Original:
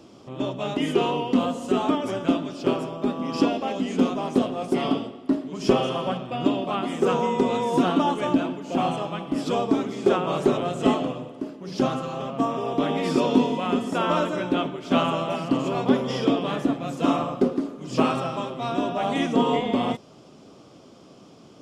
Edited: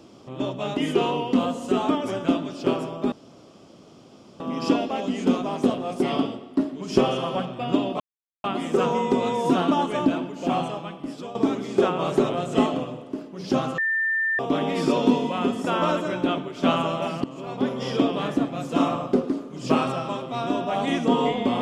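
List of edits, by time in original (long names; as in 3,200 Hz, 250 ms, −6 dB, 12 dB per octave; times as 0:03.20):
0:03.12: splice in room tone 1.28 s
0:06.72: splice in silence 0.44 s
0:08.78–0:09.63: fade out, to −15 dB
0:12.06–0:12.67: beep over 1,790 Hz −20.5 dBFS
0:15.52–0:16.28: fade in, from −17 dB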